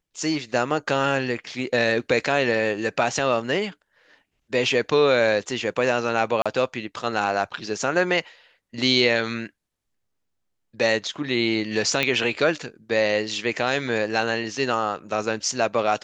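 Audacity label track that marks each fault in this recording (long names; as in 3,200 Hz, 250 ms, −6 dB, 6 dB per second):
6.420000	6.460000	drop-out 36 ms
12.030000	12.030000	click −8 dBFS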